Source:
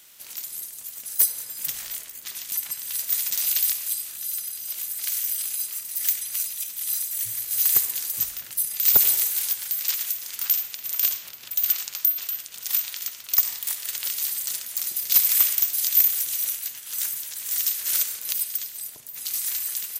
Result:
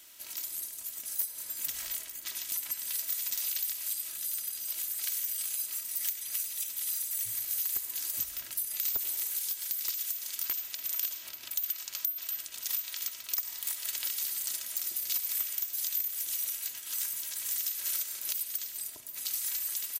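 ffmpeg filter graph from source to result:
-filter_complex "[0:a]asettb=1/sr,asplit=3[a][b][c];[a]atrim=end=9.364[d];[b]atrim=start=9.36:end=10.56,asetpts=PTS-STARTPTS,afade=t=in:d=0.004:c=qsin,afade=t=out:st=1.196:d=0.004:c=qsin,equalizer=f=86:t=o:w=1.2:g=-8,acrossover=split=270|3000[e][f][g];[f]acompressor=threshold=-51dB:ratio=2:attack=3.2:release=140:knee=2.83:detection=peak[h];[e][h][g]amix=inputs=3:normalize=0,aeval=exprs='0.211*(abs(mod(val(0)/0.211+3,4)-2)-1)':c=same[i];[c]atrim=start=10.556[j];[d][i]acrossfade=d=0.004:c1=hsin:c2=qsin[k];[k][j]acrossfade=d=0.004:c1=qsin:c2=hsin,aecho=1:1:3.1:0.5,acompressor=threshold=-26dB:ratio=6,volume=-3.5dB"

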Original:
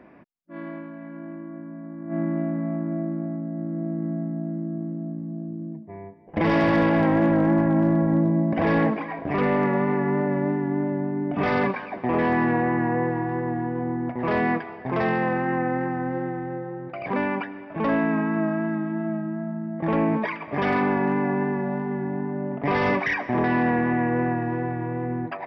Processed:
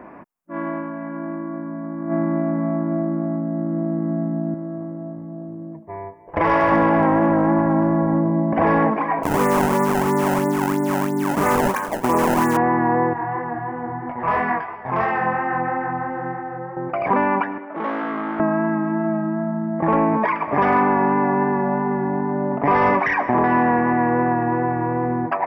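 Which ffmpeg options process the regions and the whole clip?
-filter_complex "[0:a]asettb=1/sr,asplit=3[a][b][c];[a]atrim=end=4.544[d];[b]atrim=start=4.54:end=6.72,asetpts=PTS-STARTPTS,afade=t=in:d=0.004:c=qsin,afade=t=out:st=2.176:d=0.004:c=qsin,equalizer=f=220:w=1.4:g=-13,bandreject=f=770:w=9.2[e];[c]atrim=start=6.716[f];[d][e]acrossfade=d=0.004:c1=hsin:c2=qsin[g];[g][f]acrossfade=d=0.004:c1=qsin:c2=hsin,asettb=1/sr,asplit=3[h][i][j];[h]atrim=end=9.234[k];[i]atrim=start=9.23:end=12.57,asetpts=PTS-STARTPTS,afade=t=in:d=0.004:c=qsin,afade=t=out:st=3.336:d=0.004:c=qsin,bandreject=f=710:w=6.6,acrusher=samples=22:mix=1:aa=0.000001:lfo=1:lforange=35.2:lforate=3[l];[j]atrim=start=12.566[m];[k][l]acrossfade=d=0.004:c1=hsin:c2=qsin[n];[n][m]acrossfade=d=0.004:c1=qsin:c2=hsin,asettb=1/sr,asplit=3[o][p][q];[o]atrim=end=13.134[r];[p]atrim=start=13.13:end=16.77,asetpts=PTS-STARTPTS,afade=t=in:d=0.004:c=qsin,afade=t=out:st=3.636:d=0.004:c=qsin,equalizer=f=310:t=o:w=1.9:g=-10,flanger=delay=19.5:depth=3.7:speed=3[s];[q]atrim=start=16.766[t];[r][s]acrossfade=d=0.004:c1=hsin:c2=qsin[u];[u][t]acrossfade=d=0.004:c1=qsin:c2=hsin,asettb=1/sr,asplit=3[v][w][x];[v]atrim=end=17.584[y];[w]atrim=start=17.58:end=18.4,asetpts=PTS-STARTPTS,afade=t=in:d=0.004:c=qsin,afade=t=out:st=0.816:d=0.004:c=qsin,volume=28dB,asoftclip=hard,volume=-28dB,highpass=f=240:w=0.5412,highpass=f=240:w=1.3066,equalizer=f=250:t=q:w=4:g=-5,equalizer=f=420:t=q:w=4:g=-5,equalizer=f=680:t=q:w=4:g=-6,equalizer=f=1k:t=q:w=4:g=-7,equalizer=f=1.7k:t=q:w=4:g=-4,equalizer=f=2.6k:t=q:w=4:g=-7,lowpass=f=3.3k:w=0.5412,lowpass=f=3.3k:w=1.3066[z];[x]atrim=start=18.396[aa];[y][z]acrossfade=d=0.004:c1=hsin:c2=qsin[ab];[ab][aa]acrossfade=d=0.004:c1=qsin:c2=hsin,acompressor=threshold=-28dB:ratio=2,equalizer=f=125:t=o:w=1:g=-3,equalizer=f=1k:t=o:w=1:g=8,equalizer=f=4k:t=o:w=1:g=-12,volume=8dB"

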